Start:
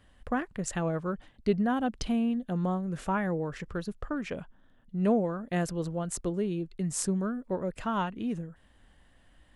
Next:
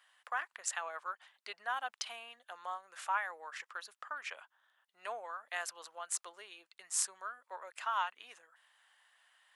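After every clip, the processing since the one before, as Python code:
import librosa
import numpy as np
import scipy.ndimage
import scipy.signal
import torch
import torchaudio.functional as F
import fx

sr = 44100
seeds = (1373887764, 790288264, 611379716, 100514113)

y = scipy.signal.sosfilt(scipy.signal.butter(4, 910.0, 'highpass', fs=sr, output='sos'), x)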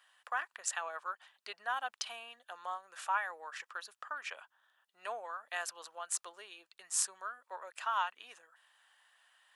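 y = fx.notch(x, sr, hz=2100.0, q=12.0)
y = F.gain(torch.from_numpy(y), 1.0).numpy()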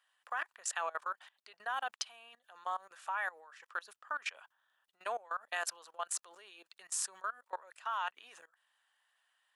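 y = fx.level_steps(x, sr, step_db=21)
y = F.gain(torch.from_numpy(y), 6.5).numpy()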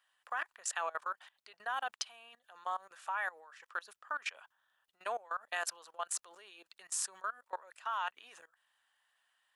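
y = fx.low_shelf(x, sr, hz=130.0, db=5.0)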